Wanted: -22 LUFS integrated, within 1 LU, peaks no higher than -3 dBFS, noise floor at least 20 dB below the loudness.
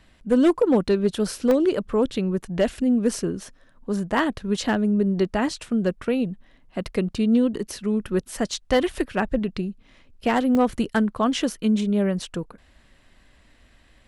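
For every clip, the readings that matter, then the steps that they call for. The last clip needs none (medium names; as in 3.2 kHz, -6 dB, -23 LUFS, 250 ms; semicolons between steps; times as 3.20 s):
clipped samples 0.3%; clipping level -11.5 dBFS; dropouts 2; longest dropout 1.4 ms; loudness -23.5 LUFS; peak level -11.5 dBFS; loudness target -22.0 LUFS
-> clip repair -11.5 dBFS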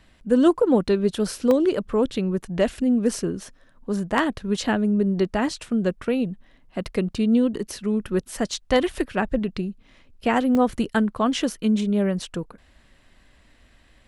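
clipped samples 0.0%; dropouts 2; longest dropout 1.4 ms
-> interpolate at 1.51/10.55 s, 1.4 ms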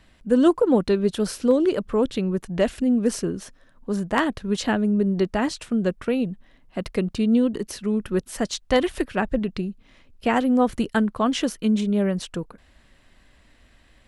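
dropouts 0; loudness -23.0 LUFS; peak level -4.5 dBFS; loudness target -22.0 LUFS
-> trim +1 dB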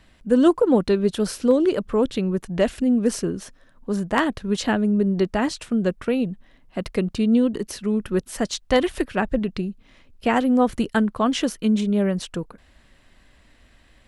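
loudness -22.0 LUFS; peak level -3.5 dBFS; noise floor -56 dBFS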